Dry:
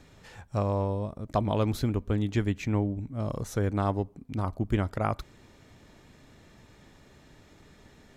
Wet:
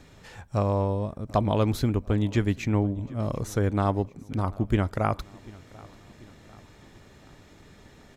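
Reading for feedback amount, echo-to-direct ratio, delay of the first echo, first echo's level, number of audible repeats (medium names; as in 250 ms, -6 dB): 53%, -21.5 dB, 741 ms, -23.0 dB, 3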